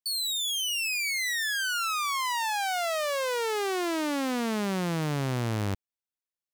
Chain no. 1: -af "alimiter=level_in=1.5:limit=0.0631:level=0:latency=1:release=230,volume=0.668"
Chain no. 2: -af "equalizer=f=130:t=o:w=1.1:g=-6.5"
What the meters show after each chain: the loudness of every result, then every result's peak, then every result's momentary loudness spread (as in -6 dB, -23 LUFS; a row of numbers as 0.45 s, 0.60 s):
-31.0 LUFS, -28.5 LUFS; -27.5 dBFS, -22.0 dBFS; 4 LU, 6 LU